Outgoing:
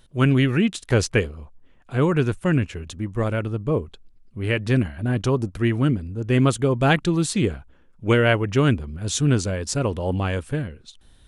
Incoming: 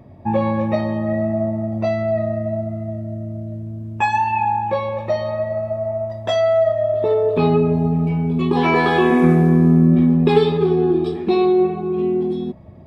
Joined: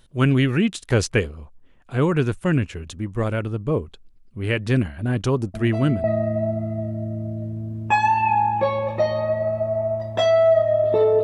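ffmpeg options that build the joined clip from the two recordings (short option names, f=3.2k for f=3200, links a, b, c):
-filter_complex "[1:a]asplit=2[a][b];[0:a]apad=whole_dur=11.23,atrim=end=11.23,atrim=end=6.042[c];[b]atrim=start=2.138:end=7.33[d];[a]atrim=start=1.64:end=2.14,asetpts=PTS-STARTPTS,volume=-10dB,afade=t=in:d=0.004:c=hsin,afade=t=out:st=0.496:d=0.004:c=hsin,adelay=5540[e];[c][d]acrossfade=d=0.004:c1=hsin:c2=hsin[f];[f][e]amix=inputs=2:normalize=0"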